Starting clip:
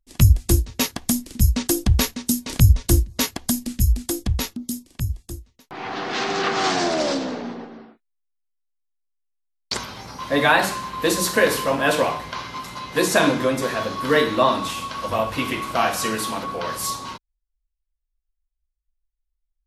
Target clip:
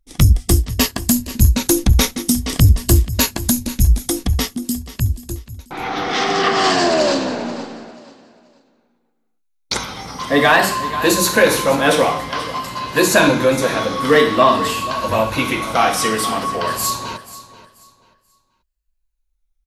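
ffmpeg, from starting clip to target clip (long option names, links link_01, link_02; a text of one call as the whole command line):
ffmpeg -i in.wav -af "afftfilt=real='re*pow(10,6/40*sin(2*PI*(1.4*log(max(b,1)*sr/1024/100)/log(2)-(-0.51)*(pts-256)/sr)))':imag='im*pow(10,6/40*sin(2*PI*(1.4*log(max(b,1)*sr/1024/100)/log(2)-(-0.51)*(pts-256)/sr)))':win_size=1024:overlap=0.75,aecho=1:1:484|968|1452:0.15|0.0404|0.0109,acontrast=72,volume=-1dB" out.wav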